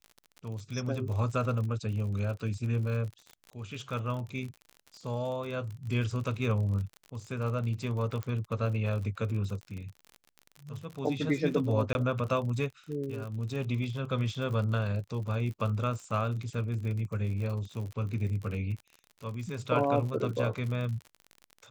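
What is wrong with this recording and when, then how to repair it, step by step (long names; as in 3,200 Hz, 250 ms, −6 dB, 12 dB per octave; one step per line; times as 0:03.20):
surface crackle 49 per second −37 dBFS
0:08.23: click −23 dBFS
0:11.93–0:11.95: drop-out 21 ms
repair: click removal
repair the gap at 0:11.93, 21 ms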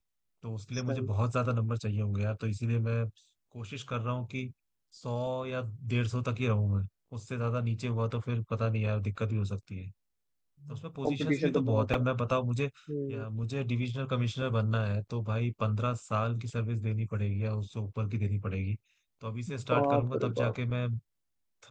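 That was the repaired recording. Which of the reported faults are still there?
none of them is left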